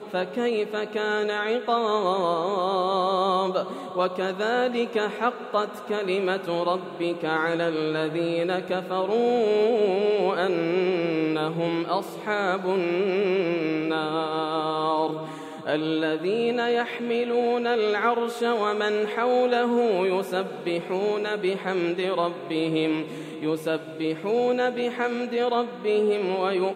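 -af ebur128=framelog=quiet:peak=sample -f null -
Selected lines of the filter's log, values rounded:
Integrated loudness:
  I:         -25.1 LUFS
  Threshold: -35.1 LUFS
Loudness range:
  LRA:         2.8 LU
  Threshold: -45.1 LUFS
  LRA low:   -26.4 LUFS
  LRA high:  -23.6 LUFS
Sample peak:
  Peak:      -10.3 dBFS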